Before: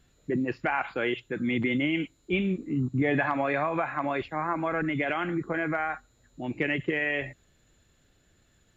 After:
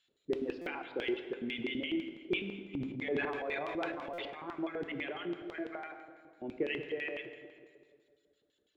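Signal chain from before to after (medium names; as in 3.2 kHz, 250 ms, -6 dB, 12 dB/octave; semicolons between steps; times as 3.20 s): reverb removal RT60 1.6 s; filtered feedback delay 187 ms, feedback 59%, low-pass 2.5 kHz, level -14 dB; LFO band-pass square 6 Hz 400–3300 Hz; plate-style reverb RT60 1.6 s, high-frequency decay 0.75×, DRR 7.5 dB; 2.73–4.35 s: transient shaper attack -4 dB, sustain +8 dB; buffer glitch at 0.61/4.13 s, samples 256, times 8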